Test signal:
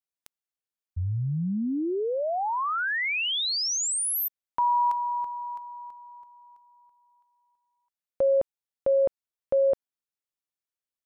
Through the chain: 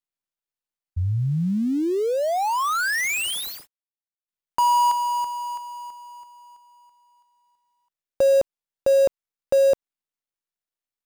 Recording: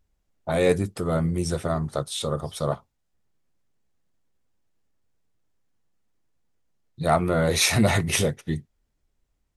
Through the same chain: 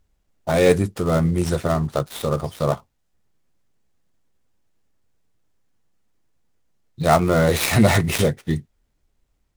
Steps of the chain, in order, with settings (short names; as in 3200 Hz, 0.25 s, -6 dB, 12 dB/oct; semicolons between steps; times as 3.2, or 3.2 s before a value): switching dead time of 0.1 ms; gain +5 dB